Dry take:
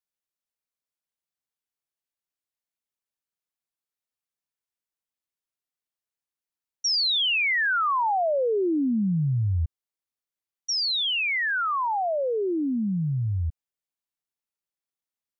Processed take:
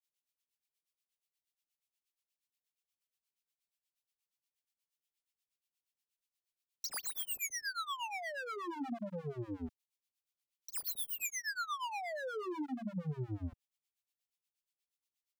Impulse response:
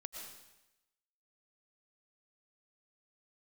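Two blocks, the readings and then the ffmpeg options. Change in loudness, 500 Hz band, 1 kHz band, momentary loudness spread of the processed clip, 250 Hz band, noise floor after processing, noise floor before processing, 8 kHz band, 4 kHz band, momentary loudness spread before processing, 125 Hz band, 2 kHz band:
-15.5 dB, -17.0 dB, -15.5 dB, 7 LU, -15.5 dB, under -85 dBFS, under -85 dBFS, no reading, -20.5 dB, 8 LU, -18.0 dB, -16.5 dB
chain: -filter_complex "[0:a]highshelf=f=2000:t=q:w=1.5:g=7.5,acrossover=split=490|3000[s0][s1][s2];[s1]acompressor=threshold=0.0501:ratio=2.5[s3];[s0][s3][s2]amix=inputs=3:normalize=0,acrossover=split=220[s4][s5];[s4]adelay=30[s6];[s6][s5]amix=inputs=2:normalize=0,aeval=exprs='0.0422*(abs(mod(val(0)/0.0422+3,4)-2)-1)':c=same,acrossover=split=750[s7][s8];[s7]aeval=exprs='val(0)*(1-1/2+1/2*cos(2*PI*8.4*n/s))':c=same[s9];[s8]aeval=exprs='val(0)*(1-1/2-1/2*cos(2*PI*8.4*n/s))':c=same[s10];[s9][s10]amix=inputs=2:normalize=0,volume=0.668"

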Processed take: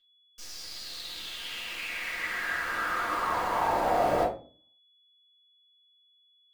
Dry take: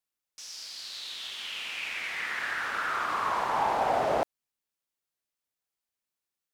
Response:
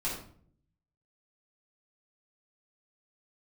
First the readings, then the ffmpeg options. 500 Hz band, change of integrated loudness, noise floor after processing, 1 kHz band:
+1.5 dB, +0.5 dB, -66 dBFS, 0.0 dB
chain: -filter_complex "[0:a]acrusher=bits=8:dc=4:mix=0:aa=0.000001,aeval=exprs='val(0)+0.001*sin(2*PI*3400*n/s)':c=same[s0];[1:a]atrim=start_sample=2205,asetrate=79380,aresample=44100[s1];[s0][s1]afir=irnorm=-1:irlink=0"

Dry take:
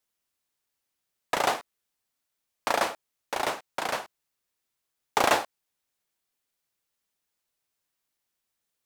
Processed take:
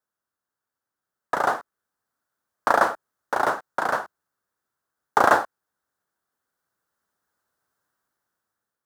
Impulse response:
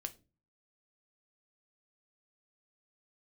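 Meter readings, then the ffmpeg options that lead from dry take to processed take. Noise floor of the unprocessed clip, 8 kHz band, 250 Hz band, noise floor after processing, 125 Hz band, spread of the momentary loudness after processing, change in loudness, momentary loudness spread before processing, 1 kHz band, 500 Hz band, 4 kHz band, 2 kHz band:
-83 dBFS, -4.5 dB, +4.0 dB, under -85 dBFS, +3.5 dB, 13 LU, +5.0 dB, 12 LU, +6.5 dB, +4.5 dB, -7.0 dB, +5.5 dB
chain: -af "highpass=61,highshelf=f=1900:t=q:w=3:g=-8,dynaudnorm=f=770:g=5:m=5.01,volume=0.891"

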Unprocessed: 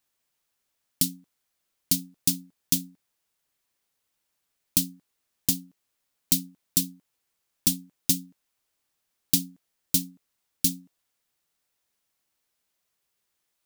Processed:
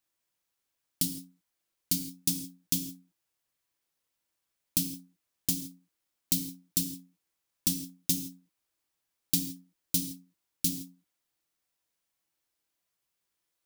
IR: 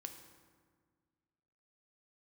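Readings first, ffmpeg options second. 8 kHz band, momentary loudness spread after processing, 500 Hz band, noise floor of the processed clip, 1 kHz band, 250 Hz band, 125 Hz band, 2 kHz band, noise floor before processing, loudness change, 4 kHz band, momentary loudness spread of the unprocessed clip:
-4.5 dB, 14 LU, -3.5 dB, -83 dBFS, no reading, -3.0 dB, -3.0 dB, -4.5 dB, -79 dBFS, -5.0 dB, -4.5 dB, 7 LU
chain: -filter_complex "[1:a]atrim=start_sample=2205,afade=t=out:st=0.22:d=0.01,atrim=end_sample=10143[s0];[0:a][s0]afir=irnorm=-1:irlink=0"

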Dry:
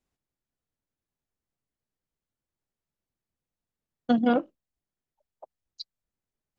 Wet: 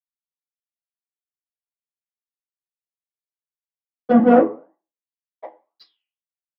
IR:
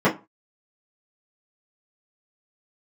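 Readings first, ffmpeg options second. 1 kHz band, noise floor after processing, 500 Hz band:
+10.5 dB, under -85 dBFS, +13.0 dB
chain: -filter_complex "[0:a]equalizer=f=3500:w=4.7:g=-9.5,aeval=exprs='sgn(val(0))*max(abs(val(0))-0.00355,0)':c=same,flanger=delay=6.2:depth=5.1:regen=-85:speed=1.9:shape=triangular,asplit=2[s0][s1];[s1]highpass=f=720:p=1,volume=11.2,asoftclip=type=tanh:threshold=0.188[s2];[s0][s2]amix=inputs=2:normalize=0,lowpass=f=1900:p=1,volume=0.501[s3];[1:a]atrim=start_sample=2205[s4];[s3][s4]afir=irnorm=-1:irlink=0,volume=0.237"

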